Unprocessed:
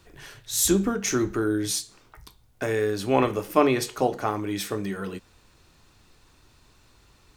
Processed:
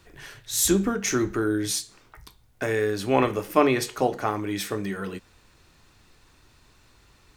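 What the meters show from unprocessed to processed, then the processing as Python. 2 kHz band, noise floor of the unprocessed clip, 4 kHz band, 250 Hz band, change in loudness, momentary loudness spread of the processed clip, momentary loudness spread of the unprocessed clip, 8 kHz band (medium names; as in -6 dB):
+2.0 dB, -59 dBFS, +0.5 dB, 0.0 dB, 0.0 dB, 13 LU, 12 LU, 0.0 dB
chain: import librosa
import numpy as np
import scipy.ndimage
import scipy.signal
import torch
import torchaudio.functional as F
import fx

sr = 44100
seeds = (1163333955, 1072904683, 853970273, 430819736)

y = fx.peak_eq(x, sr, hz=1900.0, db=3.0, octaves=0.77)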